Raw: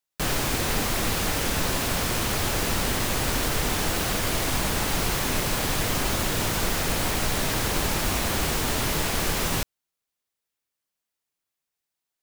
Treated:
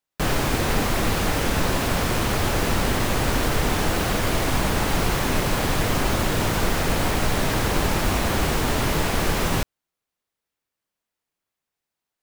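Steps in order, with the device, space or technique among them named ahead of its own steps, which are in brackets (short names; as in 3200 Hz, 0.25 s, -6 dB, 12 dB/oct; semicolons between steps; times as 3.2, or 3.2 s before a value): behind a face mask (high shelf 2800 Hz -8 dB); gain +5 dB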